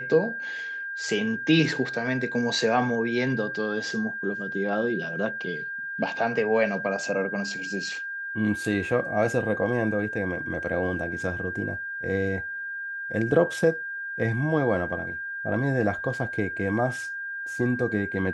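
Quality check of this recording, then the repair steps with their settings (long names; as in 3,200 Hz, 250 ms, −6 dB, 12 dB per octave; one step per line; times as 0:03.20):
whistle 1,600 Hz −31 dBFS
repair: notch filter 1,600 Hz, Q 30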